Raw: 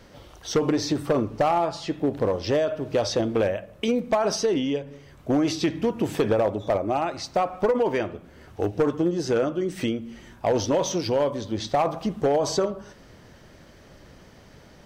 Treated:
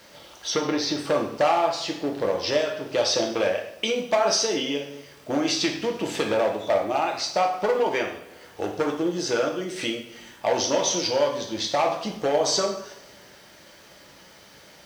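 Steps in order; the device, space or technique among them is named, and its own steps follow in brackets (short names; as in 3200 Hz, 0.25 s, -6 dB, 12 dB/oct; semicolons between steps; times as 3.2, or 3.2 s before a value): LPF 5000 Hz 12 dB/oct; turntable without a phono preamp (RIAA curve recording; white noise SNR 35 dB); 0.5–0.98 bell 7600 Hz -10.5 dB 0.82 oct; two-slope reverb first 0.62 s, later 2.7 s, from -25 dB, DRR 1.5 dB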